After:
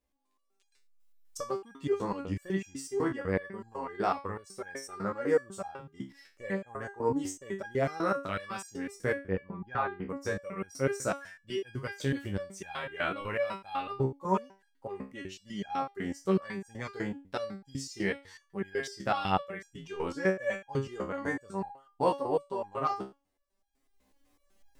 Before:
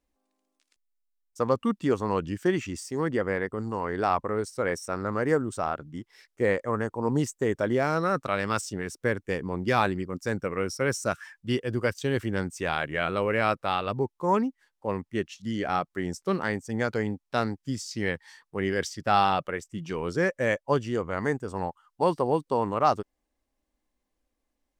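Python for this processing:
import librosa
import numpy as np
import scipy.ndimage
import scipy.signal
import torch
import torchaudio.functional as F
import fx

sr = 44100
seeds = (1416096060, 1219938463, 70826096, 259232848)

y = fx.recorder_agc(x, sr, target_db=-18.0, rise_db_per_s=12.0, max_gain_db=30)
y = fx.lowpass(y, sr, hz=1800.0, slope=12, at=(9.13, 10.09))
y = fx.resonator_held(y, sr, hz=8.0, low_hz=66.0, high_hz=820.0)
y = y * 10.0 ** (5.0 / 20.0)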